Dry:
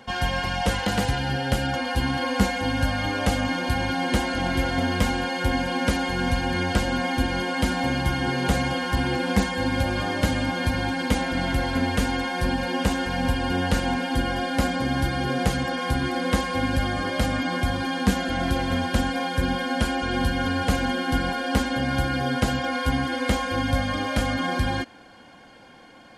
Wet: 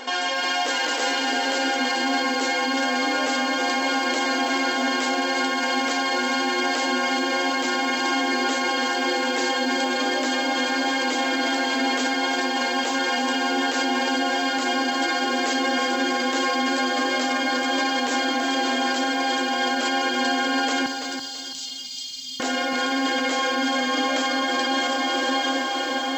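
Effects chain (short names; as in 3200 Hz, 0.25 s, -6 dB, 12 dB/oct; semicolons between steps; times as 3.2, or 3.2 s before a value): tracing distortion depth 0.065 ms; on a send: diffused feedback echo 0.636 s, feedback 53%, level -8 dB; on the sum: FFT band-pass 240–7900 Hz; in parallel at +3 dB: negative-ratio compressor -30 dBFS, ratio -0.5; on the sum: high shelf 3900 Hz +8.5 dB; limiter -16 dBFS, peak gain reduction 9 dB; 20.86–22.4 inverse Chebyshev band-stop 330–1600 Hz, stop band 50 dB; lo-fi delay 0.333 s, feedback 35%, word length 8-bit, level -7 dB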